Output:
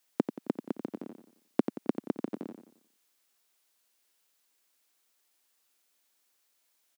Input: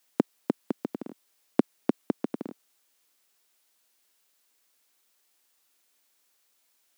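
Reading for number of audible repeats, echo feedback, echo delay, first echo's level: 4, 41%, 89 ms, −9.0 dB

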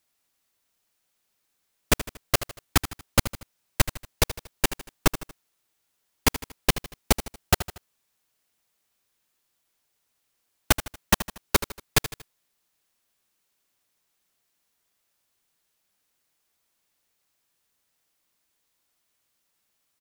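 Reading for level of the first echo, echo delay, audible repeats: −13.0 dB, 78 ms, 3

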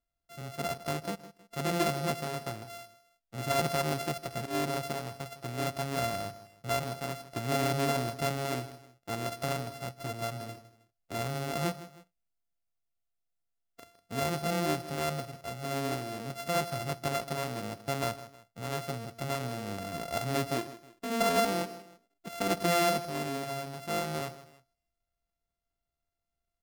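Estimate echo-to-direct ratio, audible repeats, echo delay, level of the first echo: −15.0 dB, 2, 158 ms, −15.5 dB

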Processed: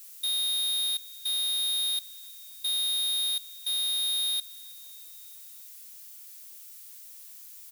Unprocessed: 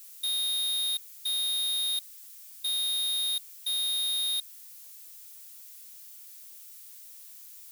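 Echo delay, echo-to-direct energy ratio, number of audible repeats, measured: 318 ms, −20.5 dB, 3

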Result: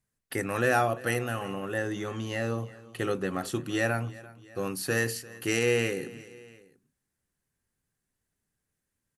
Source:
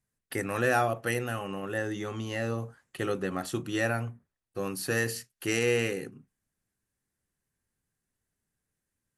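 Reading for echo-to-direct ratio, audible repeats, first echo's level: −18.5 dB, 2, −20.0 dB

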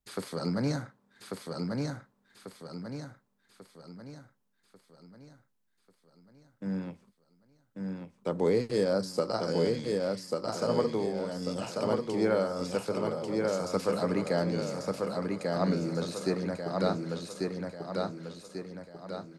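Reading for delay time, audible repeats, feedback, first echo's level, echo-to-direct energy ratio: 1,142 ms, 5, 46%, −3.0 dB, −2.0 dB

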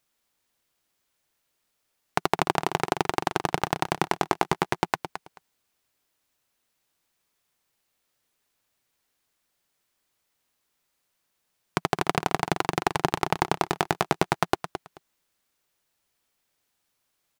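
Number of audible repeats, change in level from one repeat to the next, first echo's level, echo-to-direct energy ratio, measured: 2, −15.5 dB, −10.0 dB, −10.0 dB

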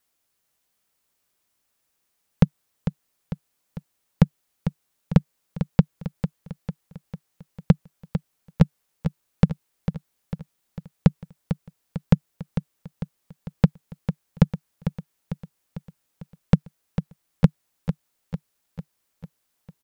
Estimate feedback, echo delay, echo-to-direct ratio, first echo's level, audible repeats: 55%, 449 ms, −8.0 dB, −9.5 dB, 5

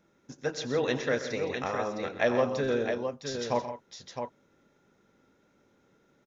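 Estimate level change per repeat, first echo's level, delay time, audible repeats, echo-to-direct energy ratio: repeats not evenly spaced, −17.5 dB, 89 ms, 4, −5.0 dB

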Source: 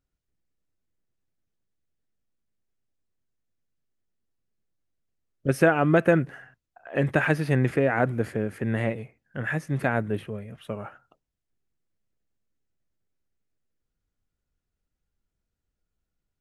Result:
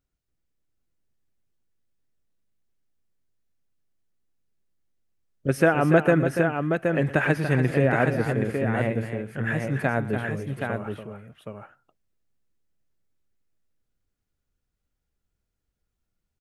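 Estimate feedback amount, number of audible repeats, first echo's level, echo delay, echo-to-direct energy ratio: repeats not evenly spaced, 3, −18.5 dB, 117 ms, −3.5 dB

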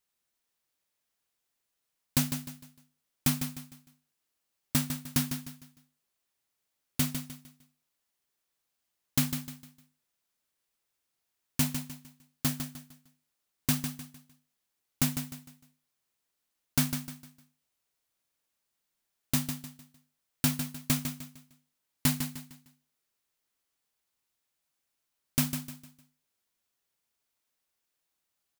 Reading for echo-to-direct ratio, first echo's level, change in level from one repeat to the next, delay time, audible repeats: −8.0 dB, −8.5 dB, −9.5 dB, 152 ms, 3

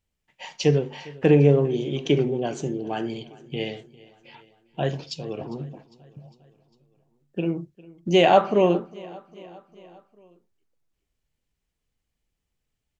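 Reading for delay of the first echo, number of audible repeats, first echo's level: 403 ms, 3, −22.0 dB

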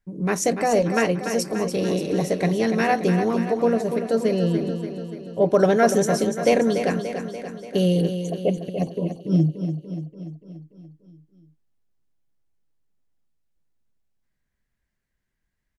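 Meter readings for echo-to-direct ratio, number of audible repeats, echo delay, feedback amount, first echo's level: −6.5 dB, 6, 290 ms, 59%, −8.5 dB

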